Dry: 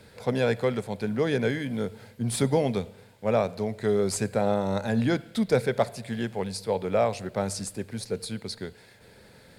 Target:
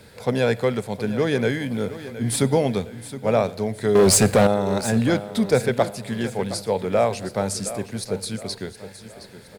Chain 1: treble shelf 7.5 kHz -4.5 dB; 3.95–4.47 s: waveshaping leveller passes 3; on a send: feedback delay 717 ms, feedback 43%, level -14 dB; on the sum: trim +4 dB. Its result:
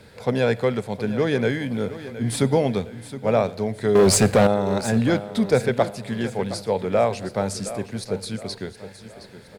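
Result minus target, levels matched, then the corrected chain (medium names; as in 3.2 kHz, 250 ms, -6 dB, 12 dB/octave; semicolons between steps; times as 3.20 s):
8 kHz band -3.0 dB
treble shelf 7.5 kHz +4 dB; 3.95–4.47 s: waveshaping leveller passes 3; on a send: feedback delay 717 ms, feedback 43%, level -14 dB; on the sum: trim +4 dB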